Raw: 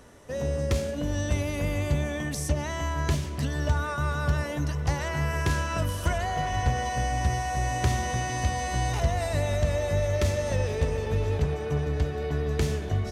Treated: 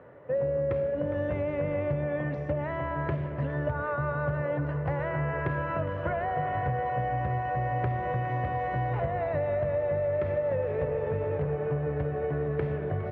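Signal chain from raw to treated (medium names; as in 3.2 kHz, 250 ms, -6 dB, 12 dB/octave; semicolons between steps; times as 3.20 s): cabinet simulation 130–2000 Hz, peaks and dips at 130 Hz +8 dB, 230 Hz -7 dB, 540 Hz +9 dB; on a send: two-band feedback delay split 430 Hz, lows 115 ms, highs 410 ms, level -14 dB; on the sum: compression, threshold -25 dBFS, peak gain reduction 6 dB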